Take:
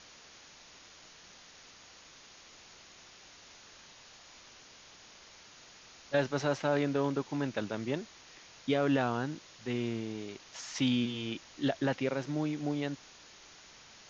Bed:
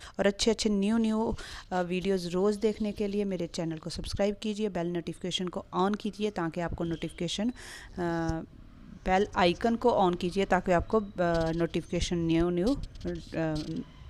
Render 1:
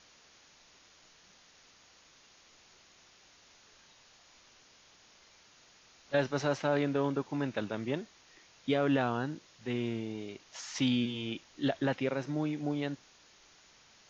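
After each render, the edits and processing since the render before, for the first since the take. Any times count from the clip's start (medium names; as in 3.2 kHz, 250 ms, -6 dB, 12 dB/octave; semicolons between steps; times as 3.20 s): noise print and reduce 6 dB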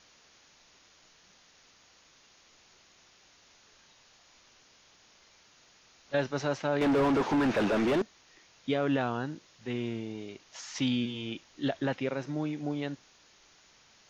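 6.81–8.02 s: overdrive pedal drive 36 dB, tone 1 kHz, clips at -17.5 dBFS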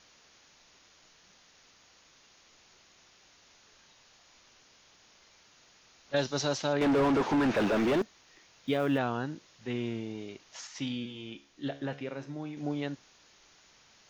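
6.16–6.73 s: resonant high shelf 3 kHz +8 dB, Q 1.5; 7.54–8.99 s: block-companded coder 7-bit; 10.67–12.57 s: feedback comb 70 Hz, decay 0.48 s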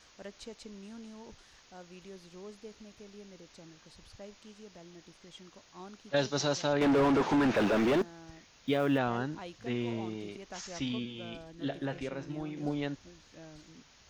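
add bed -20.5 dB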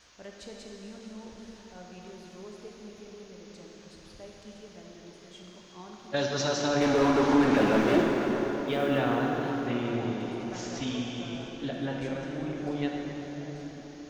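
plate-style reverb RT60 4.9 s, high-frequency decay 0.65×, DRR -1.5 dB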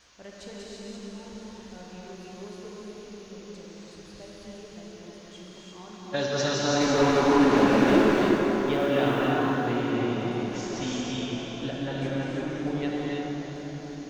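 gated-style reverb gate 360 ms rising, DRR -1 dB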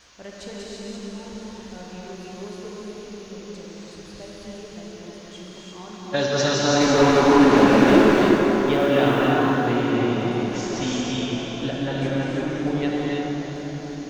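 trim +5.5 dB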